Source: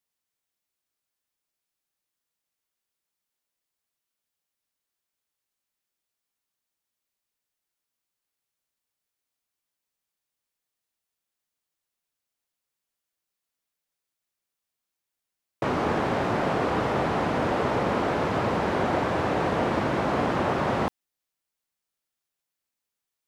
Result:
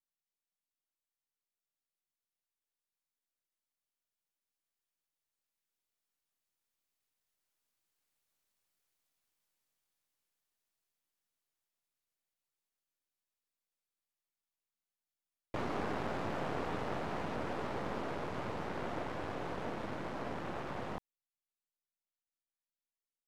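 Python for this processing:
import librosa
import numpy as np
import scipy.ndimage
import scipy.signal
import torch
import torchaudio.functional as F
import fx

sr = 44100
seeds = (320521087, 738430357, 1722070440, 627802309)

y = np.where(x < 0.0, 10.0 ** (-12.0 / 20.0) * x, x)
y = fx.doppler_pass(y, sr, speed_mps=12, closest_m=18.0, pass_at_s=8.71)
y = y * librosa.db_to_amplitude(5.0)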